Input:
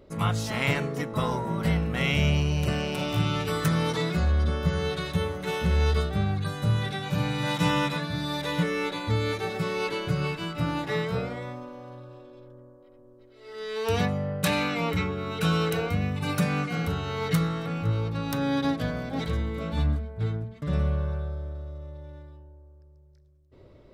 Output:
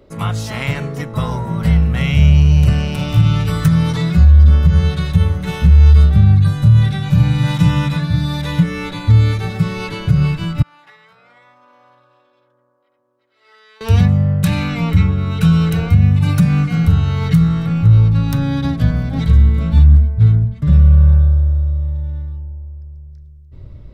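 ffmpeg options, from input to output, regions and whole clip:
ffmpeg -i in.wav -filter_complex "[0:a]asettb=1/sr,asplit=3[link_01][link_02][link_03];[link_01]atrim=end=10.624[link_04];[link_02]atrim=start=10.62:end=13.81,asetpts=PTS-STARTPTS,afade=type=in:duration=0.004:curve=qsin,afade=type=out:start_time=3.186:duration=0.004:curve=qsin,highshelf=frequency=3000:gain=-11.5,acompressor=threshold=-38dB:ratio=12:attack=3.2:release=140:knee=1:detection=peak,highpass=980[link_05];[link_03]atrim=start=13.806[link_06];[link_04][link_05]acrossfade=duration=0.004:curve1=hsin:curve2=qsin[link_07];[link_07][link_06]acrossfade=duration=0.004:curve1=qsin:curve2=hsin,asubboost=boost=8.5:cutoff=140,acrossover=split=200[link_08][link_09];[link_09]acompressor=threshold=-24dB:ratio=6[link_10];[link_08][link_10]amix=inputs=2:normalize=0,alimiter=level_in=6dB:limit=-1dB:release=50:level=0:latency=1,volume=-1dB" out.wav

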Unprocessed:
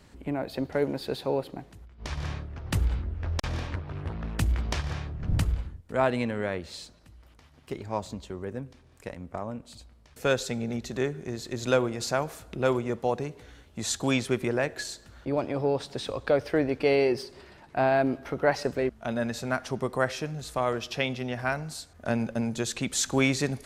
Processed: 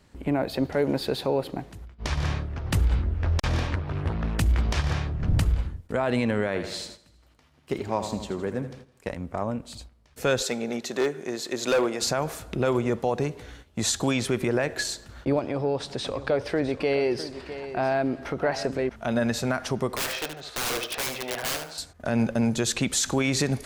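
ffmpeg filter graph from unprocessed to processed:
ffmpeg -i in.wav -filter_complex "[0:a]asettb=1/sr,asplit=3[link_01][link_02][link_03];[link_01]atrim=end=6.474[link_04];[link_02]atrim=start=6.47:end=9.07,asetpts=PTS-STARTPTS,afade=type=in:duration=0.004:curve=qsin,afade=type=out:start_time=2.596:duration=0.004:curve=qsin,highpass=44,equalizer=frequency=88:width=1.8:gain=-6,aecho=1:1:81|162|243|324|405|486|567:0.282|0.166|0.0981|0.0579|0.0342|0.0201|0.0119,atrim=end_sample=114660[link_05];[link_03]atrim=start=9.066[link_06];[link_04][link_05]acrossfade=duration=0.004:curve1=hsin:curve2=qsin[link_07];[link_07][link_06]acrossfade=duration=0.004:curve1=qsin:curve2=hsin,asettb=1/sr,asplit=3[link_08][link_09][link_10];[link_08]atrim=end=10.424[link_11];[link_09]atrim=start=10.42:end=12.02,asetpts=PTS-STARTPTS,afade=type=in:duration=0.004:curve=qsin,afade=type=out:start_time=1.596:duration=0.004:curve=qsin,highpass=310,volume=24.5dB,asoftclip=hard,volume=-24.5dB[link_12];[link_10]atrim=start=12.016[link_13];[link_11][link_12]acrossfade=duration=0.004:curve1=hsin:curve2=qsin[link_14];[link_14][link_13]acrossfade=duration=0.004:curve1=qsin:curve2=hsin,asettb=1/sr,asplit=3[link_15][link_16][link_17];[link_15]atrim=end=15.394[link_18];[link_16]atrim=start=15.39:end=18.96,asetpts=PTS-STARTPTS,afade=type=in:duration=0.004:curve=qsin,afade=type=out:start_time=3.566:duration=0.004:curve=qsin,lowpass=10000,acompressor=threshold=-39dB:ratio=1.5:attack=3.2:release=140:knee=1:detection=peak,aecho=1:1:656:0.224,atrim=end_sample=157437[link_19];[link_17]atrim=start=18.956[link_20];[link_18][link_19]acrossfade=duration=0.004:curve1=hsin:curve2=qsin[link_21];[link_21][link_20]acrossfade=duration=0.004:curve1=qsin:curve2=hsin,asettb=1/sr,asplit=3[link_22][link_23][link_24];[link_22]atrim=end=19.964[link_25];[link_23]atrim=start=19.96:end=21.78,asetpts=PTS-STARTPTS,afade=type=in:duration=0.004:curve=qsin,afade=type=out:start_time=1.816:duration=0.004:curve=qsin,acrossover=split=410 4600:gain=0.112 1 0.112[link_26][link_27][link_28];[link_26][link_27][link_28]amix=inputs=3:normalize=0,aeval=exprs='(mod(29.9*val(0)+1,2)-1)/29.9':channel_layout=same,aecho=1:1:74|148|222:0.398|0.0916|0.0211,atrim=end_sample=80262[link_29];[link_24]atrim=start=21.776[link_30];[link_25][link_29]acrossfade=duration=0.004:curve1=hsin:curve2=qsin[link_31];[link_31][link_30]acrossfade=duration=0.004:curve1=qsin:curve2=hsin,agate=range=-10dB:threshold=-50dB:ratio=16:detection=peak,alimiter=limit=-20.5dB:level=0:latency=1:release=67,volume=6.5dB" out.wav

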